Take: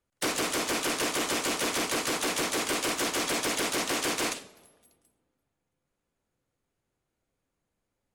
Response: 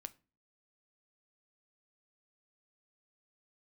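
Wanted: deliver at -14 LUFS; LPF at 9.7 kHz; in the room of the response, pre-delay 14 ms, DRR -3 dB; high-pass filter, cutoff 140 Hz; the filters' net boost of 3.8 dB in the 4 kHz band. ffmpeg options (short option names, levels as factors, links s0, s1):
-filter_complex "[0:a]highpass=140,lowpass=9700,equalizer=f=4000:t=o:g=5,asplit=2[s0][s1];[1:a]atrim=start_sample=2205,adelay=14[s2];[s1][s2]afir=irnorm=-1:irlink=0,volume=2.51[s3];[s0][s3]amix=inputs=2:normalize=0,volume=2.51"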